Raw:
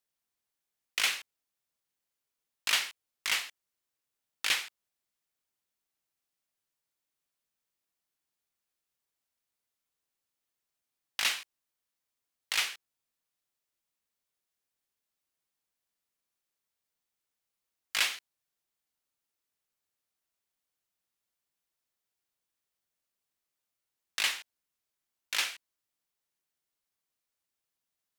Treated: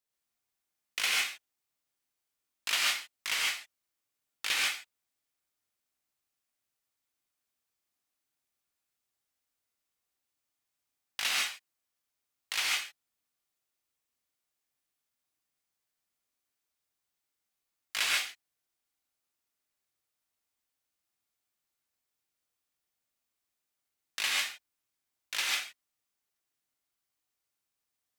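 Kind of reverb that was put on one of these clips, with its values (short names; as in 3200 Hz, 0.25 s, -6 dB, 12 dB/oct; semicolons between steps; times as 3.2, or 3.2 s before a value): non-linear reverb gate 0.17 s rising, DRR -3 dB; gain -3.5 dB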